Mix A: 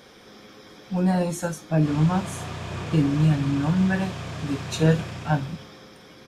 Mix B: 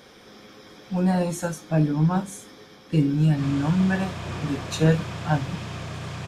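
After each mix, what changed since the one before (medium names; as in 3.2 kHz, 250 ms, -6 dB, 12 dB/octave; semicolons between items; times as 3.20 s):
background: entry +1.55 s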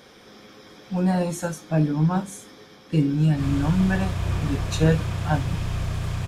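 background: remove band-pass 160–7700 Hz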